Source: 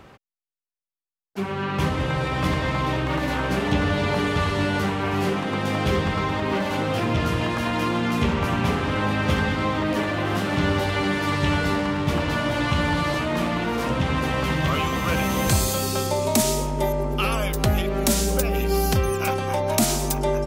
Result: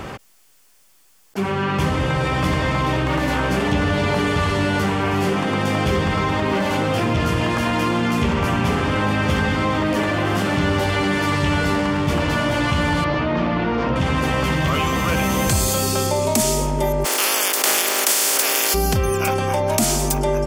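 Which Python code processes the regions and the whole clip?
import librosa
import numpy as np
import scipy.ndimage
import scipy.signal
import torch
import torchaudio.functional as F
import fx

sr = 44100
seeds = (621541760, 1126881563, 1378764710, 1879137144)

y = fx.chain(x, sr, fx.lowpass(hz=5200.0, slope=24),
    fx.high_shelf(hz=2800.0, db=-9.0), at=(13.04, 13.96))
y = fx.spec_flatten(y, sr, power=0.26, at=(17.04, 18.73), fade=0.02)
y = fx.highpass(y, sr, hz=310.0, slope=24, at=(17.04, 18.73), fade=0.02)
y = fx.peak_eq(y, sr, hz=7900.0, db=2.5, octaves=0.77)
y = fx.notch(y, sr, hz=3900.0, q=14.0)
y = fx.env_flatten(y, sr, amount_pct=50)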